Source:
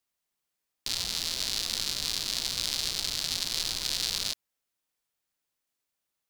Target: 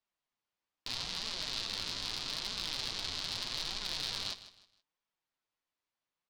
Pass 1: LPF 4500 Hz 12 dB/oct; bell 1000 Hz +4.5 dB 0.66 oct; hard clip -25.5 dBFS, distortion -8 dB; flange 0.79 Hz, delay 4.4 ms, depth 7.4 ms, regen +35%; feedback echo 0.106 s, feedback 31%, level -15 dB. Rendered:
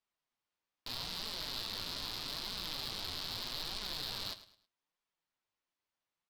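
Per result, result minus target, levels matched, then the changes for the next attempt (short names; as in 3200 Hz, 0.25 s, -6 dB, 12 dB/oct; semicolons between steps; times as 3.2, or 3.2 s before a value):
hard clip: distortion +13 dB; echo 51 ms early
change: hard clip -18 dBFS, distortion -21 dB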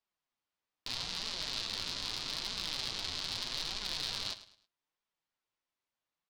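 echo 51 ms early
change: feedback echo 0.157 s, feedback 31%, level -15 dB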